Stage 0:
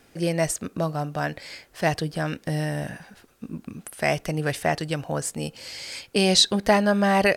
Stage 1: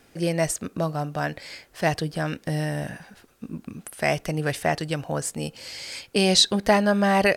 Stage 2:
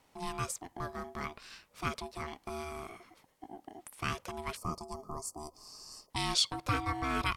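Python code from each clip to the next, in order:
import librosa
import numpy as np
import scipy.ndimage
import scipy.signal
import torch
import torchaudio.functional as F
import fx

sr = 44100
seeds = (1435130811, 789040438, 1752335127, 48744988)

y1 = x
y2 = fx.dynamic_eq(y1, sr, hz=230.0, q=0.72, threshold_db=-34.0, ratio=4.0, max_db=-6)
y2 = y2 * np.sin(2.0 * np.pi * 530.0 * np.arange(len(y2)) / sr)
y2 = fx.spec_box(y2, sr, start_s=4.57, length_s=1.53, low_hz=1300.0, high_hz=4300.0, gain_db=-21)
y2 = F.gain(torch.from_numpy(y2), -8.0).numpy()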